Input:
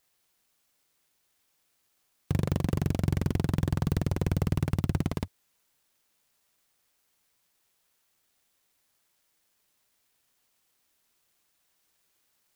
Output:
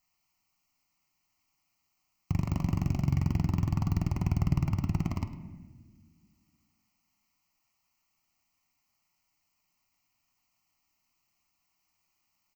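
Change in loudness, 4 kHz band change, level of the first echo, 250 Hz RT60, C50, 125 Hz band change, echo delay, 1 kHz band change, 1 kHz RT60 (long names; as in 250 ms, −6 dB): −0.5 dB, −6.0 dB, −15.0 dB, 2.6 s, 9.5 dB, 0.0 dB, 104 ms, −1.0 dB, 1.2 s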